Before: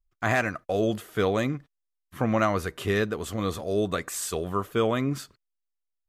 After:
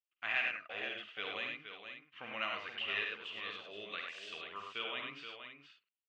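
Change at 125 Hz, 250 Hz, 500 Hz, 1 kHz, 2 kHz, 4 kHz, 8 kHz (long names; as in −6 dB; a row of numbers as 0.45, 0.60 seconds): −34.0 dB, −27.5 dB, −22.0 dB, −14.5 dB, −5.5 dB, −2.0 dB, below −30 dB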